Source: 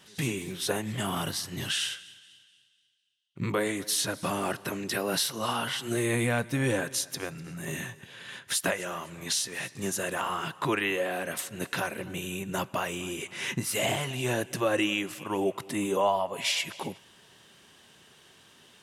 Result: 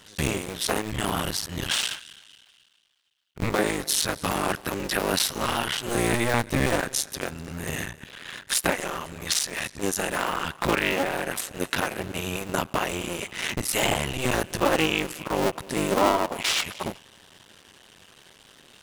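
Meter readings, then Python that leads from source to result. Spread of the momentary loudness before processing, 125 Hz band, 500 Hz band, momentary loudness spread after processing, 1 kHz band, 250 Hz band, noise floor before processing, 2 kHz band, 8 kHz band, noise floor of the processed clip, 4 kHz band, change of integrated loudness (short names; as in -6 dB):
9 LU, +2.5 dB, +3.5 dB, 9 LU, +5.0 dB, +3.0 dB, -60 dBFS, +4.5 dB, +4.0 dB, -57 dBFS, +4.0 dB, +4.0 dB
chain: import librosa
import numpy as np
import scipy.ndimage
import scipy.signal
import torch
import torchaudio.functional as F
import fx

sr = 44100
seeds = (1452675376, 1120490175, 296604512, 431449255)

y = fx.cycle_switch(x, sr, every=2, mode='muted')
y = y * 10.0 ** (7.0 / 20.0)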